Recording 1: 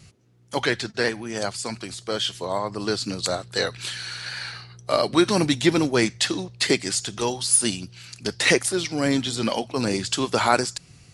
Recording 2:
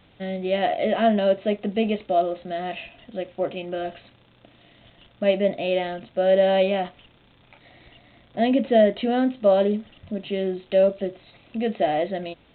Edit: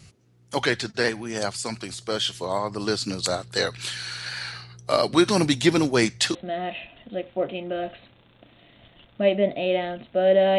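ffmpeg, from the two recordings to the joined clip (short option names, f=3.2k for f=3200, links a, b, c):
-filter_complex "[0:a]apad=whole_dur=10.58,atrim=end=10.58,atrim=end=6.352[a];[1:a]atrim=start=2.368:end=6.6[b];[a][b]acrossfade=d=0.004:c1=hsin:c2=hsin"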